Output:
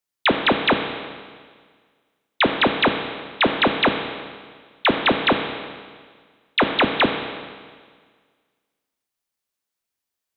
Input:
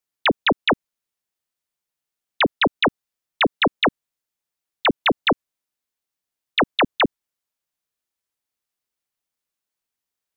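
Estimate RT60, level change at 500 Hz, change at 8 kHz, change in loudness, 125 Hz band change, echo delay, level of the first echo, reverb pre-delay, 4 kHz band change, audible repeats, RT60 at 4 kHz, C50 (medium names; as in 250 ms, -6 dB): 1.7 s, +1.5 dB, no reading, +0.5 dB, +1.5 dB, no echo, no echo, 6 ms, +1.5 dB, no echo, 1.7 s, 6.0 dB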